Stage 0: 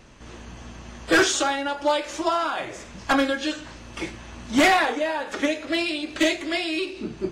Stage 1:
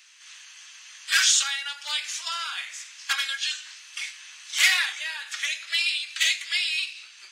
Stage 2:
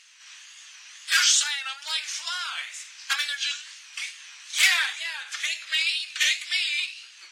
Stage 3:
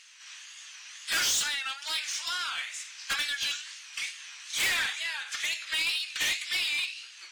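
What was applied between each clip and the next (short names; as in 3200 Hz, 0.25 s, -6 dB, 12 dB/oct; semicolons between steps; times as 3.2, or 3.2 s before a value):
Bessel high-pass 2700 Hz, order 4; gain +6.5 dB
wow and flutter 110 cents
soft clip -24 dBFS, distortion -7 dB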